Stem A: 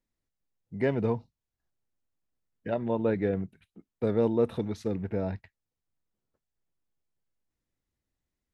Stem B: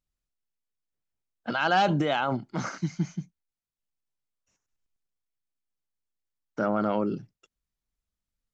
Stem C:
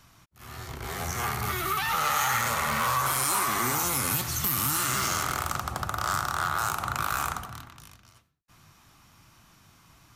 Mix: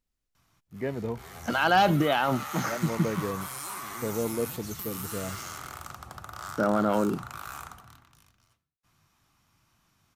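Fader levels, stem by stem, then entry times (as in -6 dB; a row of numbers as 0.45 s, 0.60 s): -5.0 dB, +1.5 dB, -11.5 dB; 0.00 s, 0.00 s, 0.35 s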